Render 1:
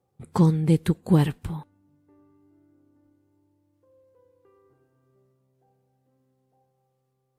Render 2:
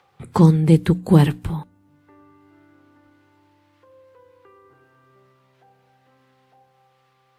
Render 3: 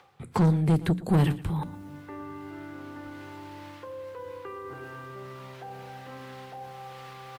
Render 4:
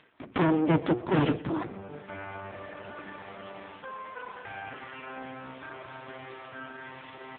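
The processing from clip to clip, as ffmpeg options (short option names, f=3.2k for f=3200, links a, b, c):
-filter_complex "[0:a]bandreject=f=60:t=h:w=6,bandreject=f=120:t=h:w=6,bandreject=f=180:t=h:w=6,bandreject=f=240:t=h:w=6,bandreject=f=300:t=h:w=6,acrossover=split=200|1000|4000[a][b][c][d];[c]acompressor=mode=upward:threshold=-53dB:ratio=2.5[e];[d]alimiter=level_in=12.5dB:limit=-24dB:level=0:latency=1:release=57,volume=-12.5dB[f];[a][b][e][f]amix=inputs=4:normalize=0,volume=6.5dB"
-af "areverse,acompressor=mode=upward:threshold=-21dB:ratio=2.5,areverse,asoftclip=type=tanh:threshold=-12.5dB,aecho=1:1:117:0.133,volume=-4dB"
-af "aeval=exprs='abs(val(0))':c=same,volume=7dB" -ar 8000 -c:a libopencore_amrnb -b:a 5900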